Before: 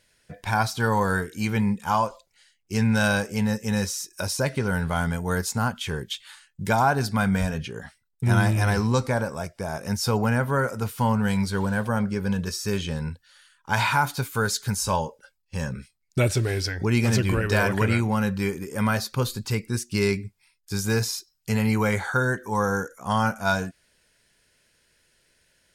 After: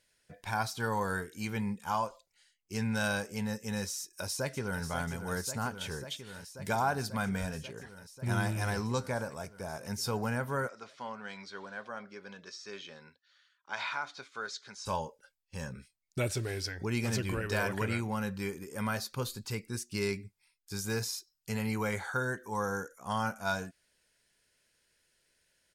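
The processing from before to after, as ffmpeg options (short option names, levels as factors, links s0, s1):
-filter_complex "[0:a]asplit=2[s0][s1];[s1]afade=t=in:st=3.99:d=0.01,afade=t=out:st=4.82:d=0.01,aecho=0:1:540|1080|1620|2160|2700|3240|3780|4320|4860|5400|5940|6480:0.334965|0.284721|0.242013|0.205711|0.174854|0.148626|0.126332|0.107382|0.0912749|0.0775837|0.0659461|0.0560542[s2];[s0][s2]amix=inputs=2:normalize=0,asplit=3[s3][s4][s5];[s3]afade=t=out:st=10.67:d=0.02[s6];[s4]highpass=470,equalizer=f=480:t=q:w=4:g=-6,equalizer=f=890:t=q:w=4:g=-9,equalizer=f=1600:t=q:w=4:g=-3,equalizer=f=2800:t=q:w=4:g=-5,equalizer=f=4700:t=q:w=4:g=-4,lowpass=f=5200:w=0.5412,lowpass=f=5200:w=1.3066,afade=t=in:st=10.67:d=0.02,afade=t=out:st=14.85:d=0.02[s7];[s5]afade=t=in:st=14.85:d=0.02[s8];[s6][s7][s8]amix=inputs=3:normalize=0,bass=f=250:g=-3,treble=f=4000:g=2,volume=0.355"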